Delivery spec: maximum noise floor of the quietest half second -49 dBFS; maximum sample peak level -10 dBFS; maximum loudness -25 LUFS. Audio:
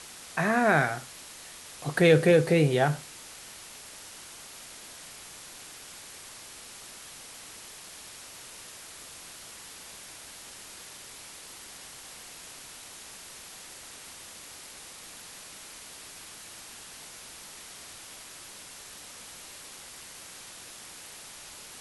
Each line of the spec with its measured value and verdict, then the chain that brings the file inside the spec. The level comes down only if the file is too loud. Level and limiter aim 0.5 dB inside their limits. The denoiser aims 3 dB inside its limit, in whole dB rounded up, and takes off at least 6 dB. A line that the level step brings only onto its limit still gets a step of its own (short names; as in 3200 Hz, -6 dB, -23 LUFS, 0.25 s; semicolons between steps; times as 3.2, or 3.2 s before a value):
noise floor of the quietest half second -46 dBFS: fail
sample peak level -8.0 dBFS: fail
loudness -24.0 LUFS: fail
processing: denoiser 6 dB, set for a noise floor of -46 dBFS; gain -1.5 dB; limiter -10.5 dBFS